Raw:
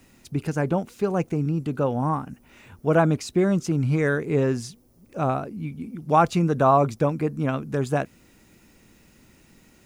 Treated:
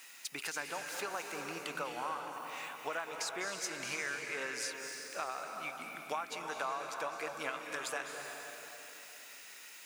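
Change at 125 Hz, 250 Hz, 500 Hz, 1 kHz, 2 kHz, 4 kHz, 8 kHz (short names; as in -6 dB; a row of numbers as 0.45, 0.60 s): -35.5, -26.5, -19.0, -14.0, -4.5, 0.0, +1.0 dB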